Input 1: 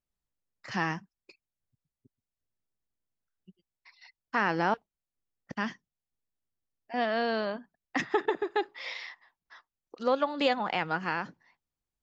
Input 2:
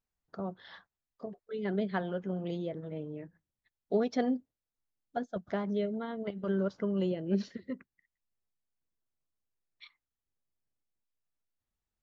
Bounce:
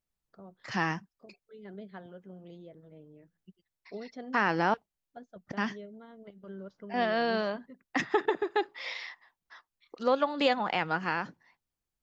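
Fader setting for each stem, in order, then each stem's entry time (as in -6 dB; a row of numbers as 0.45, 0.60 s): +0.5, -13.0 dB; 0.00, 0.00 s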